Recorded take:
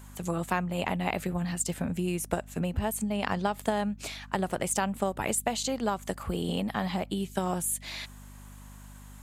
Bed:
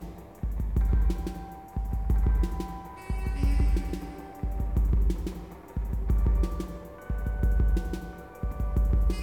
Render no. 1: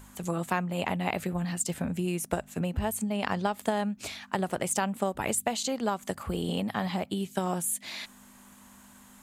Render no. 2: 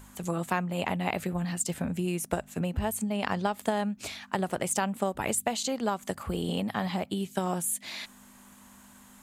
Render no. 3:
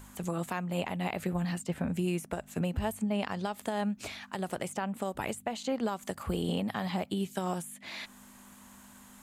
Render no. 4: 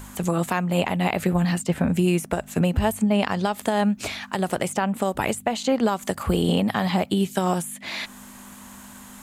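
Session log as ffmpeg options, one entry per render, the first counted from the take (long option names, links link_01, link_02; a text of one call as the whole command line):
ffmpeg -i in.wav -af "bandreject=frequency=50:width_type=h:width=4,bandreject=frequency=100:width_type=h:width=4,bandreject=frequency=150:width_type=h:width=4" out.wav
ffmpeg -i in.wav -af anull out.wav
ffmpeg -i in.wav -filter_complex "[0:a]acrossover=split=2900[link_01][link_02];[link_01]alimiter=limit=-22dB:level=0:latency=1:release=198[link_03];[link_02]acompressor=threshold=-45dB:ratio=6[link_04];[link_03][link_04]amix=inputs=2:normalize=0" out.wav
ffmpeg -i in.wav -af "volume=10.5dB" out.wav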